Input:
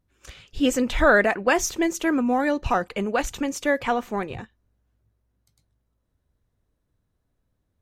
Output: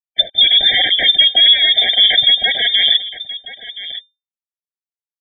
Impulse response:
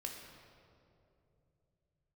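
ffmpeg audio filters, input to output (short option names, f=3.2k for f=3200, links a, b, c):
-filter_complex "[0:a]afftdn=nr=13:nf=-40,agate=range=-33dB:threshold=-48dB:ratio=3:detection=peak,acrossover=split=2600[a][b];[b]acompressor=threshold=-43dB:ratio=4:attack=1:release=60[c];[a][c]amix=inputs=2:normalize=0,equalizer=f=1.6k:w=1.7:g=-5.5,areverse,acompressor=threshold=-34dB:ratio=8,areverse,atempo=1.5,acrusher=bits=10:mix=0:aa=0.000001,aeval=exprs='0.02*(abs(mod(val(0)/0.02+3,4)-2)-1)':c=same,asplit=2[d][e];[e]aecho=0:1:1023:0.119[f];[d][f]amix=inputs=2:normalize=0,lowpass=f=3.1k:t=q:w=0.5098,lowpass=f=3.1k:t=q:w=0.6013,lowpass=f=3.1k:t=q:w=0.9,lowpass=f=3.1k:t=q:w=2.563,afreqshift=-3600,alimiter=level_in=33.5dB:limit=-1dB:release=50:level=0:latency=1,afftfilt=real='re*eq(mod(floor(b*sr/1024/780),2),0)':imag='im*eq(mod(floor(b*sr/1024/780),2),0)':win_size=1024:overlap=0.75,volume=-1dB"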